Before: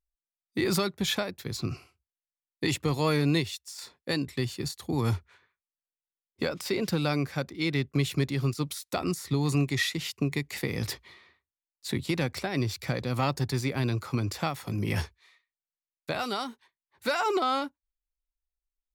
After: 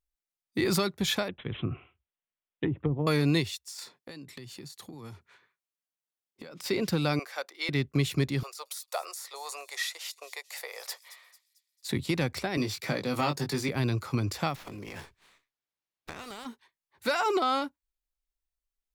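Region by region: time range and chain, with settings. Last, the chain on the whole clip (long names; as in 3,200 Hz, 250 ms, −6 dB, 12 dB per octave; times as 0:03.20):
0:01.28–0:03.07: low-pass filter 7,100 Hz 24 dB per octave + treble cut that deepens with the level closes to 360 Hz, closed at −23 dBFS + bad sample-rate conversion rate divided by 6×, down none, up filtered
0:03.83–0:06.64: high-pass filter 120 Hz 24 dB per octave + downward compressor 16 to 1, threshold −40 dBFS
0:07.19–0:07.69: high-pass filter 540 Hz 24 dB per octave + notch filter 2,500 Hz, Q 27
0:08.43–0:11.89: dynamic equaliser 2,600 Hz, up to −6 dB, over −47 dBFS, Q 0.78 + Butterworth high-pass 520 Hz 48 dB per octave + delay with a high-pass on its return 223 ms, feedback 42%, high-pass 5,400 Hz, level −12 dB
0:12.57–0:13.69: high-pass filter 160 Hz + double-tracking delay 20 ms −6 dB + multiband upward and downward compressor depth 40%
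0:14.55–0:16.45: ceiling on every frequency bin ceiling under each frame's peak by 15 dB + downward compressor 5 to 1, threshold −39 dBFS + windowed peak hold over 5 samples
whole clip: no processing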